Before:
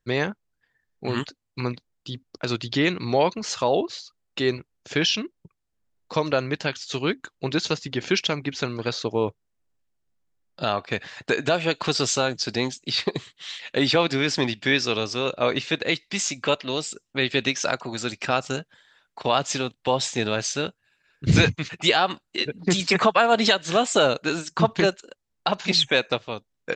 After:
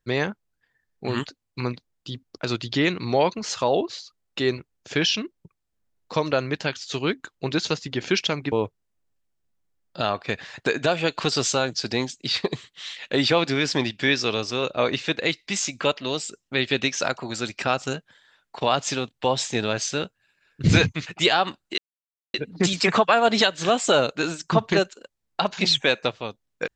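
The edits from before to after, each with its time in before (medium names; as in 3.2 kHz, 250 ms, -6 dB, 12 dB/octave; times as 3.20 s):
8.52–9.15 s: delete
22.41 s: insert silence 0.56 s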